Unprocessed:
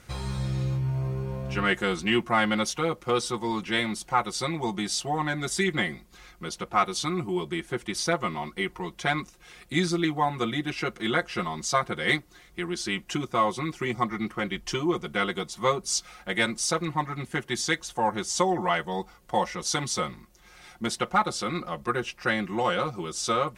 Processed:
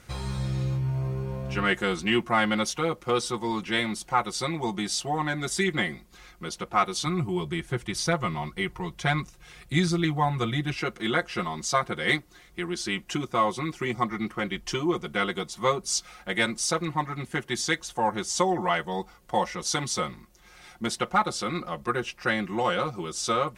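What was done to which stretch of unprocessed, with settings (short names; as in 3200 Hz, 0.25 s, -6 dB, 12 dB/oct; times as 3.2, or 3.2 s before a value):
7.06–10.77 resonant low shelf 180 Hz +6.5 dB, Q 1.5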